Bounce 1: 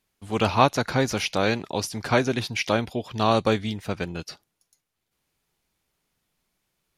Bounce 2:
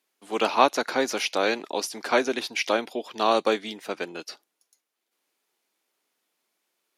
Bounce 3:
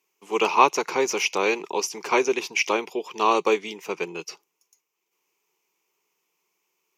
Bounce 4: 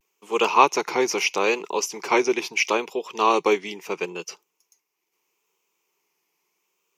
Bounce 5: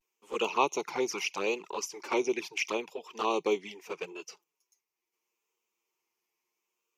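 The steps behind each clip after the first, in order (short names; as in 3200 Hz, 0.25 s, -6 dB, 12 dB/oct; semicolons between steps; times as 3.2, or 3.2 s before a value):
HPF 280 Hz 24 dB/oct
ripple EQ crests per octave 0.76, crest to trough 12 dB
vibrato 0.76 Hz 68 cents; gain +1 dB
envelope flanger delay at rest 8.6 ms, full sweep at -17 dBFS; gain -7 dB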